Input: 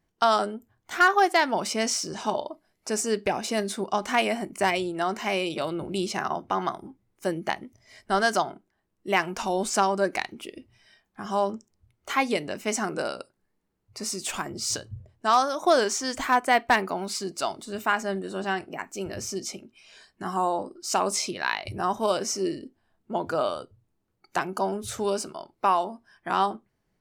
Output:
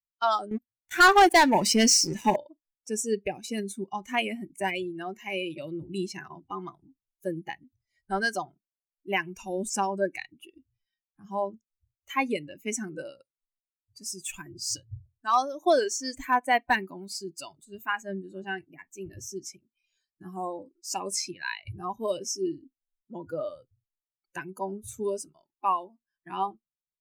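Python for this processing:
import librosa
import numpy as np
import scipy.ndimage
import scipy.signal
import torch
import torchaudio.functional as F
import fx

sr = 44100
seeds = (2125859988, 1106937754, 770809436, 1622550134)

y = fx.bin_expand(x, sr, power=1.5)
y = fx.leveller(y, sr, passes=3, at=(0.51, 2.36))
y = fx.noise_reduce_blind(y, sr, reduce_db=12)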